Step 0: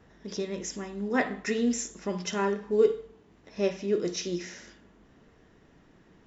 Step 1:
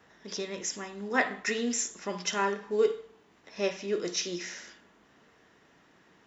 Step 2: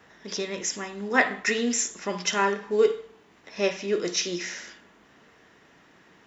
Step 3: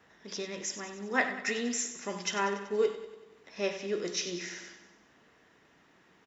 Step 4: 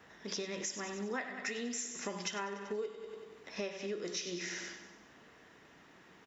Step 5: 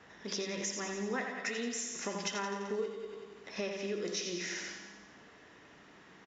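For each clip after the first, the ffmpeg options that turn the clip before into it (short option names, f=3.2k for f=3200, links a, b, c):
-filter_complex "[0:a]highpass=f=200:p=1,acrossover=split=720[a][b];[b]acontrast=80[c];[a][c]amix=inputs=2:normalize=0,volume=-3.5dB"
-af "equalizer=f=2.2k:w=1.5:g=2,volume=4.5dB"
-af "aecho=1:1:95|190|285|380|475|570:0.251|0.146|0.0845|0.049|0.0284|0.0165,volume=-7dB"
-af "acompressor=threshold=-39dB:ratio=12,volume=3.5dB"
-af "aecho=1:1:85|170|255|340|425|510|595:0.376|0.218|0.126|0.0733|0.0425|0.0247|0.0143,aresample=16000,aresample=44100,volume=1.5dB"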